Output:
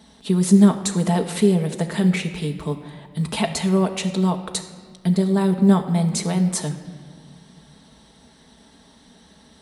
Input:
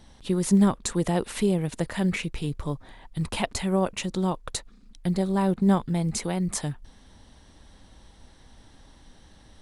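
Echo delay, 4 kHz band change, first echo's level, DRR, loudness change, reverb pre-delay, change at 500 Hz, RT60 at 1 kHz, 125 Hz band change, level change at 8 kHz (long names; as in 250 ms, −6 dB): no echo audible, +5.5 dB, no echo audible, 4.5 dB, +6.0 dB, 4 ms, +5.0 dB, 1.6 s, +6.5 dB, +5.0 dB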